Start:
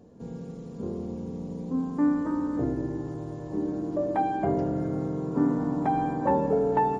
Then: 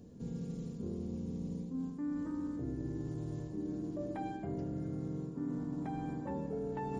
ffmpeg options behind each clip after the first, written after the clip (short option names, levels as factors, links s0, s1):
-af "equalizer=f=830:w=0.54:g=-12.5,areverse,acompressor=threshold=0.0112:ratio=6,areverse,volume=1.41"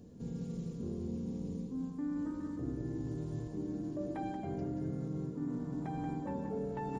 -af "aecho=1:1:182:0.447"